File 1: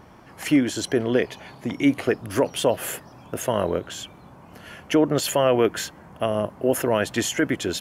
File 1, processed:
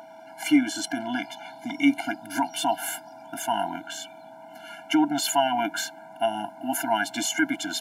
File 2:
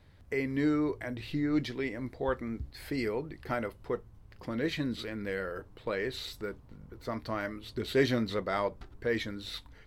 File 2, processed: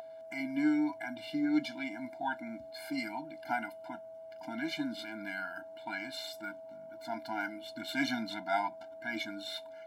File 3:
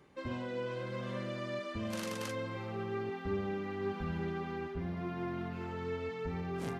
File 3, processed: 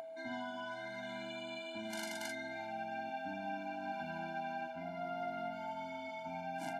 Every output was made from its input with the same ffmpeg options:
ffmpeg -i in.wav -af "aeval=exprs='val(0)+0.0158*sin(2*PI*650*n/s)':channel_layout=same,highpass=frequency=440:width_type=q:width=3.7,afftfilt=real='re*eq(mod(floor(b*sr/1024/340),2),0)':imag='im*eq(mod(floor(b*sr/1024/340),2),0)':win_size=1024:overlap=0.75,volume=2.5dB" out.wav

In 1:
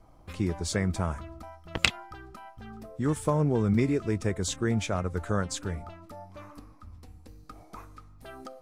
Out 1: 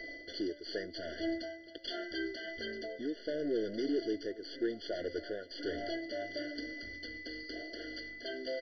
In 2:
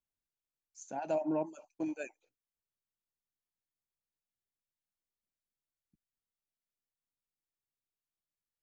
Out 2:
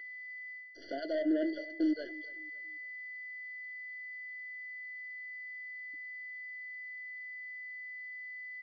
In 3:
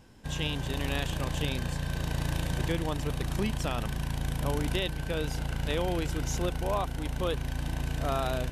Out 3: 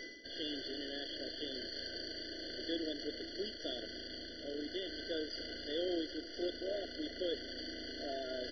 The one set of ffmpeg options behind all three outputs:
ffmpeg -i in.wav -filter_complex "[0:a]equalizer=frequency=74:width_type=o:width=2.8:gain=-8.5,acontrast=90,aexciter=amount=8.7:drive=8.8:freq=3900,aeval=exprs='val(0)+0.00398*sin(2*PI*2000*n/s)':channel_layout=same,areverse,acompressor=threshold=-30dB:ratio=20,areverse,aeval=exprs='(tanh(70.8*val(0)+0.25)-tanh(0.25))/70.8':channel_layout=same,lowshelf=frequency=230:width_type=q:width=3:gain=-11,asplit=2[link_01][link_02];[link_02]aecho=0:1:280|560|840:0.106|0.0371|0.013[link_03];[link_01][link_03]amix=inputs=2:normalize=0,aresample=11025,aresample=44100,afftfilt=real='re*eq(mod(floor(b*sr/1024/700),2),0)':imag='im*eq(mod(floor(b*sr/1024/700),2),0)':win_size=1024:overlap=0.75,volume=5.5dB" out.wav

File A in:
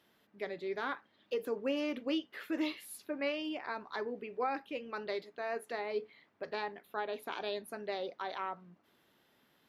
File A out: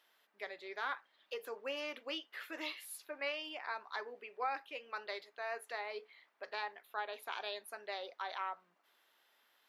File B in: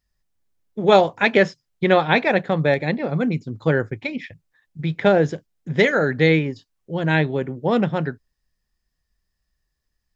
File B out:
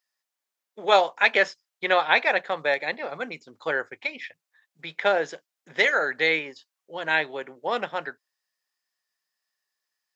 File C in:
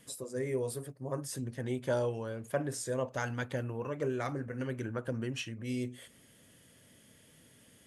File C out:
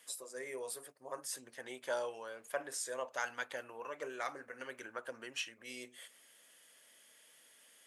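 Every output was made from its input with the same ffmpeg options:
ffmpeg -i in.wav -af "highpass=750" out.wav

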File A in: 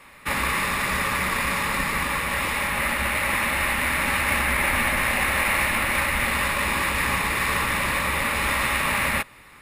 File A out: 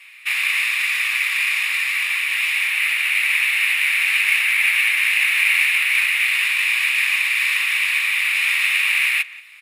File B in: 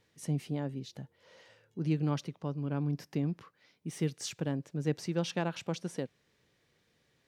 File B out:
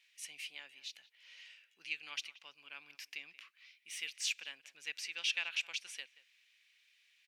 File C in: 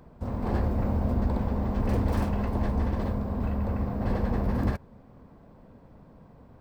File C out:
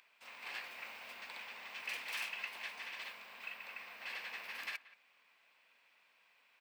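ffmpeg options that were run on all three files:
ffmpeg -i in.wav -filter_complex "[0:a]highpass=frequency=2500:width_type=q:width=3.9,asplit=2[link_01][link_02];[link_02]adelay=180,highpass=300,lowpass=3400,asoftclip=type=hard:threshold=-12.5dB,volume=-18dB[link_03];[link_01][link_03]amix=inputs=2:normalize=0" out.wav

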